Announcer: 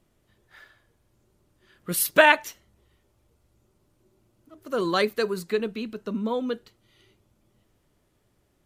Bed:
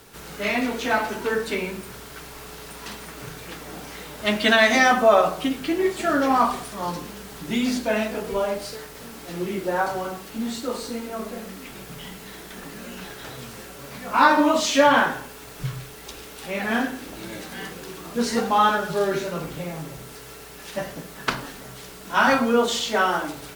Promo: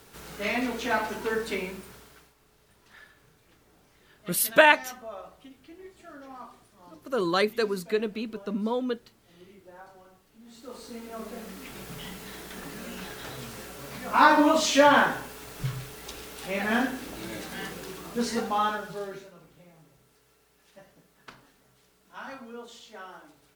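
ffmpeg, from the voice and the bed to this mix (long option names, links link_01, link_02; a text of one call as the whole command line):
ffmpeg -i stem1.wav -i stem2.wav -filter_complex "[0:a]adelay=2400,volume=-1dB[link_01];[1:a]volume=18.5dB,afade=type=out:start_time=1.55:duration=0.8:silence=0.0944061,afade=type=in:start_time=10.44:duration=1.44:silence=0.0707946,afade=type=out:start_time=17.75:duration=1.59:silence=0.0891251[link_02];[link_01][link_02]amix=inputs=2:normalize=0" out.wav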